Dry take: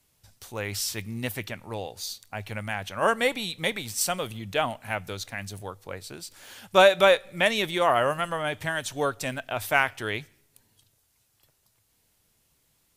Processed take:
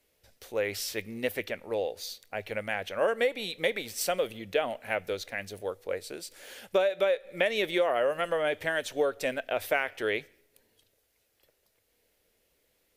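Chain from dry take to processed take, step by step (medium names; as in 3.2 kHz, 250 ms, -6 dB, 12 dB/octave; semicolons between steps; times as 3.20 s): graphic EQ 125/500/1000/2000/8000 Hz -11/+12/-6/+5/-5 dB; compression 16:1, threshold -19 dBFS, peak gain reduction 14.5 dB; 5.61–6.69 s: dynamic bell 8.8 kHz, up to +6 dB, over -58 dBFS, Q 0.83; trim -3 dB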